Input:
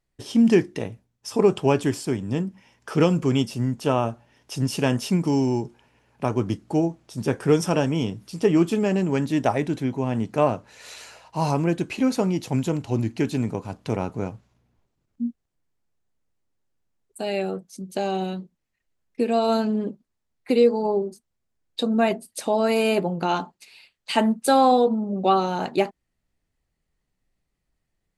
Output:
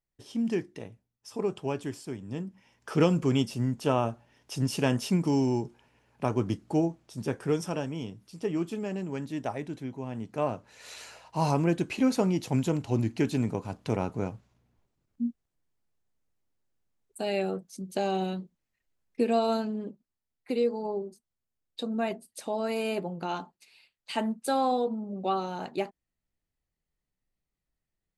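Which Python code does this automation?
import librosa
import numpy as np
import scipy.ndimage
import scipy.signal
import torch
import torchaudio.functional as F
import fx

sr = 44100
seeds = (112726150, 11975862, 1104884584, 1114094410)

y = fx.gain(x, sr, db=fx.line((2.19, -12.0), (2.92, -4.0), (6.8, -4.0), (7.92, -11.5), (10.19, -11.5), (11.0, -3.0), (19.32, -3.0), (19.73, -9.5)))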